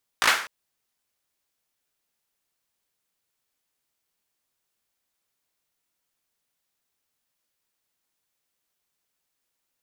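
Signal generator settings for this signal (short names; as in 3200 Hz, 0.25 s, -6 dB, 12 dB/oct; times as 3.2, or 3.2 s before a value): hand clap length 0.25 s, apart 18 ms, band 1500 Hz, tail 0.44 s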